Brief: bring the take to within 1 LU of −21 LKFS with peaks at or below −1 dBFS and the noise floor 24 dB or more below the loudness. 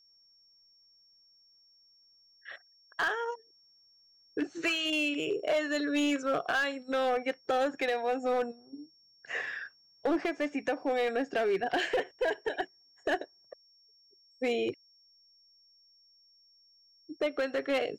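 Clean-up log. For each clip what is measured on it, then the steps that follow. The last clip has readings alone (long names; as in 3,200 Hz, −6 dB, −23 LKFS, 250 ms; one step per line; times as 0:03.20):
share of clipped samples 1.6%; peaks flattened at −23.5 dBFS; interfering tone 5,500 Hz; level of the tone −61 dBFS; integrated loudness −31.5 LKFS; sample peak −23.5 dBFS; target loudness −21.0 LKFS
→ clipped peaks rebuilt −23.5 dBFS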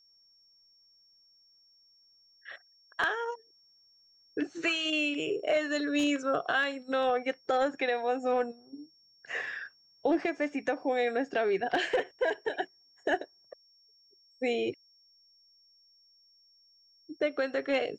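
share of clipped samples 0.0%; interfering tone 5,500 Hz; level of the tone −61 dBFS
→ notch filter 5,500 Hz, Q 30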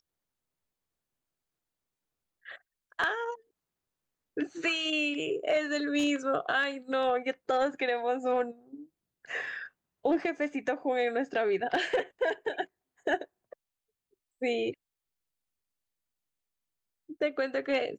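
interfering tone none found; integrated loudness −31.0 LKFS; sample peak −14.5 dBFS; target loudness −21.0 LKFS
→ level +10 dB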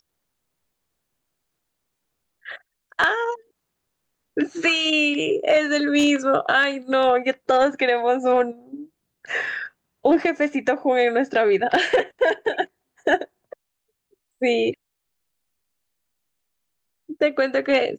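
integrated loudness −21.0 LKFS; sample peak −4.5 dBFS; background noise floor −78 dBFS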